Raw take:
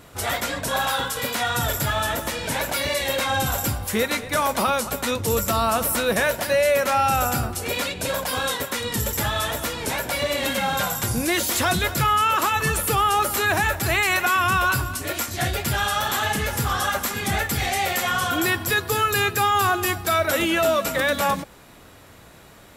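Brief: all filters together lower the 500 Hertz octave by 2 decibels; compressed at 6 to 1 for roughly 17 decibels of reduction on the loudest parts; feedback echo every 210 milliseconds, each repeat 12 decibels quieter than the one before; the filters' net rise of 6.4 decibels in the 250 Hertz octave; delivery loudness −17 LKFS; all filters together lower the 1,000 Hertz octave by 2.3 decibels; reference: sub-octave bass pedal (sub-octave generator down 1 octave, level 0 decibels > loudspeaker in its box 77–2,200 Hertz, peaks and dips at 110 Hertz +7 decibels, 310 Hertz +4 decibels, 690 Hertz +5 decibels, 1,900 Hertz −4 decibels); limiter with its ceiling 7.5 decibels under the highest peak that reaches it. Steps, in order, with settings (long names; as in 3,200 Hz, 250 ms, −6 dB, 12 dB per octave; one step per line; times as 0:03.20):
parametric band 250 Hz +8 dB
parametric band 500 Hz −6.5 dB
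parametric band 1,000 Hz −3 dB
downward compressor 6 to 1, threshold −37 dBFS
brickwall limiter −32 dBFS
repeating echo 210 ms, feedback 25%, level −12 dB
sub-octave generator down 1 octave, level 0 dB
loudspeaker in its box 77–2,200 Hz, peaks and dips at 110 Hz +7 dB, 310 Hz +4 dB, 690 Hz +5 dB, 1,900 Hz −4 dB
level +23 dB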